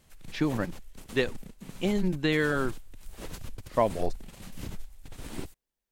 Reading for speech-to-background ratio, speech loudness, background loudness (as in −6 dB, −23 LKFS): 16.0 dB, −29.5 LKFS, −45.5 LKFS